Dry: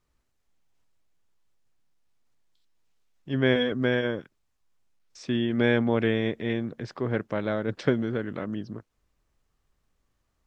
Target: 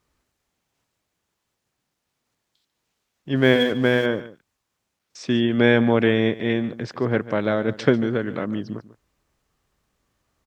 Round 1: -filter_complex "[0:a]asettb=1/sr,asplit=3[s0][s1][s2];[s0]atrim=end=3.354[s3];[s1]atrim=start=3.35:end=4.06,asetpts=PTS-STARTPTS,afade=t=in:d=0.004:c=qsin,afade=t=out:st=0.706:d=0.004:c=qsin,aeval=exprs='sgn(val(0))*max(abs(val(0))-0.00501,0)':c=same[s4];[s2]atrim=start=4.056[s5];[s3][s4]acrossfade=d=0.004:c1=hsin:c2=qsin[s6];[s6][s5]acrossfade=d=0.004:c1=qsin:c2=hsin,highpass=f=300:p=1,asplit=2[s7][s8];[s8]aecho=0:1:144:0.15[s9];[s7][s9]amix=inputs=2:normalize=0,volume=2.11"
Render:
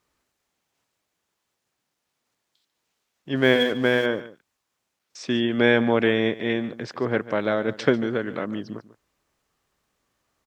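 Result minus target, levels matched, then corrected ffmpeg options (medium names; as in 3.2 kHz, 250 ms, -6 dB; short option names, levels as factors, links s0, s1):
125 Hz band -4.5 dB
-filter_complex "[0:a]asettb=1/sr,asplit=3[s0][s1][s2];[s0]atrim=end=3.354[s3];[s1]atrim=start=3.35:end=4.06,asetpts=PTS-STARTPTS,afade=t=in:d=0.004:c=qsin,afade=t=out:st=0.706:d=0.004:c=qsin,aeval=exprs='sgn(val(0))*max(abs(val(0))-0.00501,0)':c=same[s4];[s2]atrim=start=4.056[s5];[s3][s4]acrossfade=d=0.004:c1=hsin:c2=qsin[s6];[s6][s5]acrossfade=d=0.004:c1=qsin:c2=hsin,highpass=f=96:p=1,asplit=2[s7][s8];[s8]aecho=0:1:144:0.15[s9];[s7][s9]amix=inputs=2:normalize=0,volume=2.11"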